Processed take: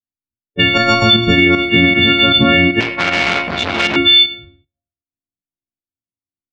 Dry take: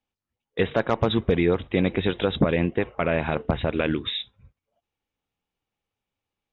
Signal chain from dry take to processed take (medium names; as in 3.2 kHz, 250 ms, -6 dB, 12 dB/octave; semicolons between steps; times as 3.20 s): partials quantised in pitch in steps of 4 st; chord resonator D#2 minor, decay 0.35 s; on a send: feedback delay 106 ms, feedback 51%, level -15 dB; on the sum: gate with hold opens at -48 dBFS; level-controlled noise filter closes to 330 Hz, open at -29 dBFS; treble shelf 2.9 kHz +9.5 dB; volume shaper 155 bpm, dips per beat 1, -8 dB, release 161 ms; graphic EQ 125/250/500/1000/2000 Hz +5/+5/-10/-3/-4 dB; loudness maximiser +24 dB; 2.80–3.96 s: transformer saturation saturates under 1.8 kHz; trim -1 dB